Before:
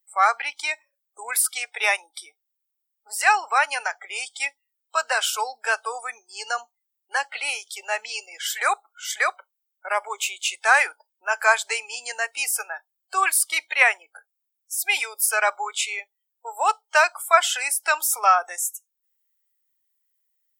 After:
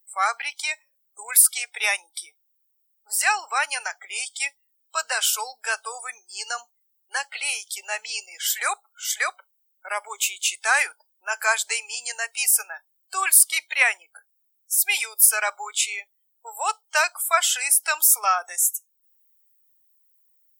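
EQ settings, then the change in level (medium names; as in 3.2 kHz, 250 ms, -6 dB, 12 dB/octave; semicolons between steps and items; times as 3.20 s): peaking EQ 2.6 kHz +3 dB 2.6 oct; treble shelf 3.7 kHz +9 dB; treble shelf 9 kHz +8.5 dB; -7.0 dB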